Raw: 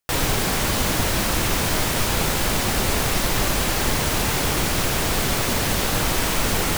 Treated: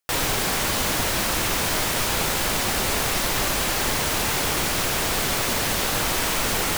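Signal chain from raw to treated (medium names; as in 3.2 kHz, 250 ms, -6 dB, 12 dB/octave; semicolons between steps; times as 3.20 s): bass shelf 320 Hz -7 dB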